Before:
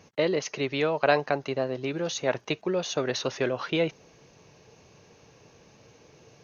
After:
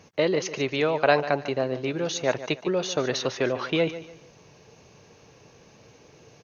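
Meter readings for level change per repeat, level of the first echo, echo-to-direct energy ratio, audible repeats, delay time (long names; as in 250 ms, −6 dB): −10.5 dB, −14.0 dB, −13.5 dB, 3, 146 ms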